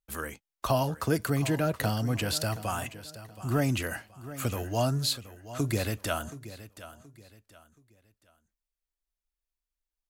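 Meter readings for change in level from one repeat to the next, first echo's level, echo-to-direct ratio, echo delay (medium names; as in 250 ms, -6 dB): -10.0 dB, -15.0 dB, -14.5 dB, 725 ms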